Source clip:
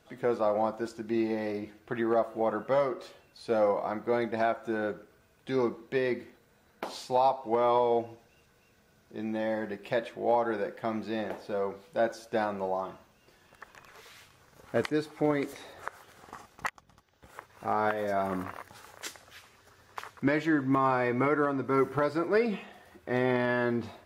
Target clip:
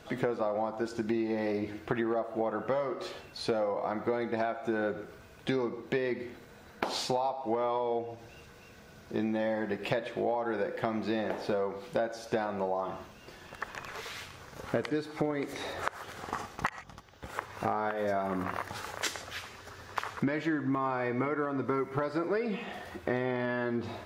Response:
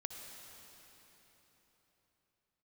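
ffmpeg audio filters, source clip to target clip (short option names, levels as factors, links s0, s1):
-filter_complex "[0:a]asplit=2[s0][s1];[1:a]atrim=start_sample=2205,atrim=end_sample=6615,lowpass=7900[s2];[s1][s2]afir=irnorm=-1:irlink=0,volume=1.06[s3];[s0][s3]amix=inputs=2:normalize=0,acompressor=threshold=0.02:ratio=12,volume=2.11"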